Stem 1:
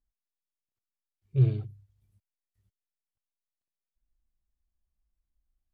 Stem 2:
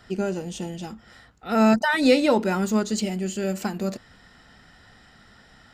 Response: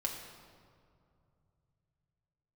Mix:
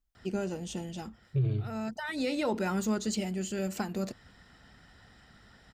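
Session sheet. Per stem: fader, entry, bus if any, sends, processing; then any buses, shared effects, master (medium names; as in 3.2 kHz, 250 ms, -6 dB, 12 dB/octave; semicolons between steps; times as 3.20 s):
+2.5 dB, 0.00 s, no send, none
-8.0 dB, 0.15 s, no send, high-pass 44 Hz; bass shelf 110 Hz +8 dB; harmonic-percussive split percussive +4 dB; auto duck -12 dB, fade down 0.20 s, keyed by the first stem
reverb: none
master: peak limiter -22 dBFS, peak gain reduction 12 dB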